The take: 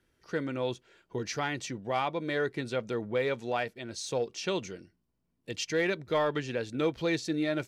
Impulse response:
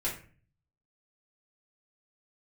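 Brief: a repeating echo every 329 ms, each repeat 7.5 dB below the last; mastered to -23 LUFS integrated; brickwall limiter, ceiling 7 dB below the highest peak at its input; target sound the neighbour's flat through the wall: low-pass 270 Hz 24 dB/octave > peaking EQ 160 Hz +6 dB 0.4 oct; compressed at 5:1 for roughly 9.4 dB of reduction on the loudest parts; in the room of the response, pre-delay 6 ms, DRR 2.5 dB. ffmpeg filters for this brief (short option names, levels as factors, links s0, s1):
-filter_complex "[0:a]acompressor=threshold=0.0178:ratio=5,alimiter=level_in=2.37:limit=0.0631:level=0:latency=1,volume=0.422,aecho=1:1:329|658|987|1316|1645:0.422|0.177|0.0744|0.0312|0.0131,asplit=2[s0][s1];[1:a]atrim=start_sample=2205,adelay=6[s2];[s1][s2]afir=irnorm=-1:irlink=0,volume=0.398[s3];[s0][s3]amix=inputs=2:normalize=0,lowpass=f=270:w=0.5412,lowpass=f=270:w=1.3066,equalizer=f=160:t=o:w=0.4:g=6,volume=11.9"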